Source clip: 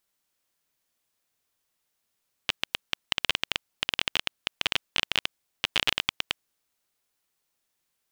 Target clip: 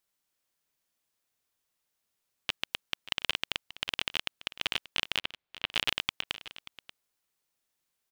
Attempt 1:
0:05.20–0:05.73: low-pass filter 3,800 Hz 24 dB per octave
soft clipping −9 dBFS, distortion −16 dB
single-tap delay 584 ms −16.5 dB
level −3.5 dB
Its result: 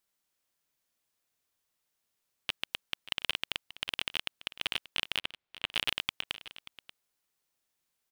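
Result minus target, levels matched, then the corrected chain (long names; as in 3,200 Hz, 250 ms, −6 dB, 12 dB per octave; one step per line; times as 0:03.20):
soft clipping: distortion +12 dB
0:05.20–0:05.73: low-pass filter 3,800 Hz 24 dB per octave
soft clipping −1.5 dBFS, distortion −28 dB
single-tap delay 584 ms −16.5 dB
level −3.5 dB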